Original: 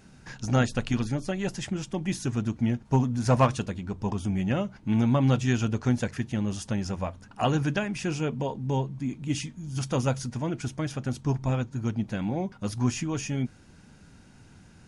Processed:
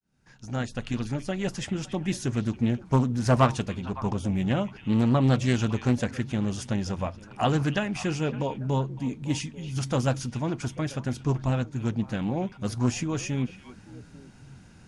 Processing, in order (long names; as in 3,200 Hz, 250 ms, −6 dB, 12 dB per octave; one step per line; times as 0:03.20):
fade in at the beginning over 1.49 s
echo through a band-pass that steps 280 ms, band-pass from 2,800 Hz, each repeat −1.4 octaves, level −10.5 dB
highs frequency-modulated by the lows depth 0.3 ms
level +1 dB